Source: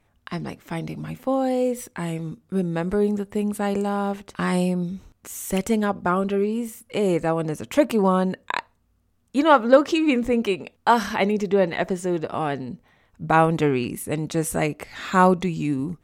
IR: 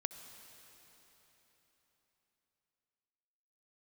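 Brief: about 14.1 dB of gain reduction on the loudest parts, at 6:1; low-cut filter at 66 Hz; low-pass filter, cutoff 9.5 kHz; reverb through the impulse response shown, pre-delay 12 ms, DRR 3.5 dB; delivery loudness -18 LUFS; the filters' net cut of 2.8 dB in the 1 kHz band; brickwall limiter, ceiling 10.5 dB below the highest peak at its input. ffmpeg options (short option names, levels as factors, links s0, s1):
-filter_complex "[0:a]highpass=66,lowpass=9500,equalizer=f=1000:t=o:g=-3.5,acompressor=threshold=0.0631:ratio=6,alimiter=limit=0.0891:level=0:latency=1,asplit=2[s0][s1];[1:a]atrim=start_sample=2205,adelay=12[s2];[s1][s2]afir=irnorm=-1:irlink=0,volume=0.75[s3];[s0][s3]amix=inputs=2:normalize=0,volume=3.76"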